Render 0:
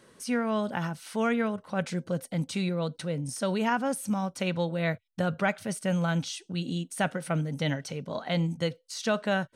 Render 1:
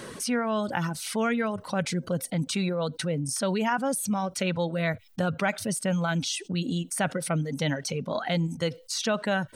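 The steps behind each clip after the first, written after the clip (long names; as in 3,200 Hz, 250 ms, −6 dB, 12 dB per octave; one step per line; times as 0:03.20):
reverb reduction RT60 0.86 s
envelope flattener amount 50%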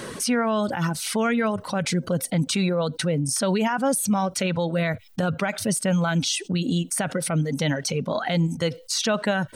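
brickwall limiter −19.5 dBFS, peak gain reduction 8 dB
level +5.5 dB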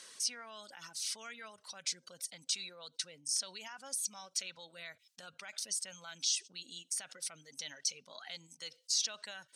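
resonant band-pass 5,900 Hz, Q 1.2
dynamic equaliser 5,300 Hz, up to +4 dB, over −43 dBFS, Q 1.5
level −7.5 dB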